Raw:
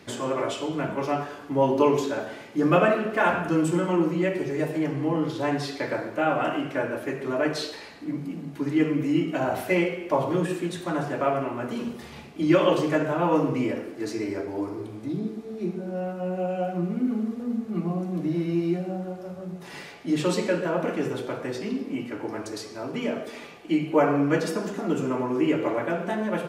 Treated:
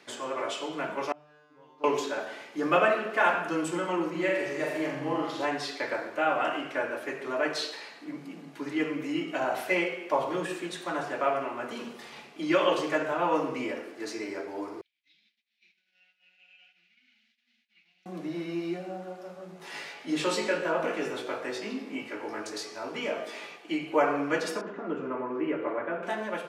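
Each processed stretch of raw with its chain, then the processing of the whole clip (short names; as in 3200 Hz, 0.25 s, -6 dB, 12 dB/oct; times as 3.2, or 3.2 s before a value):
1.12–1.84 high shelf 5400 Hz -10 dB + resonator 150 Hz, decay 1.3 s, mix 100% + Doppler distortion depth 0.17 ms
4.1–5.45 flutter echo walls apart 7.5 m, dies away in 0.75 s + mismatched tape noise reduction decoder only
14.81–18.06 expander -28 dBFS + inverse Chebyshev high-pass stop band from 1200 Hz + air absorption 250 m
19.58–23.56 upward compressor, threshold -42 dBFS + doubler 19 ms -4 dB
24.61–26.03 LPF 1600 Hz + bell 790 Hz -5.5 dB 0.44 oct
whole clip: weighting filter A; AGC gain up to 3 dB; gain -4 dB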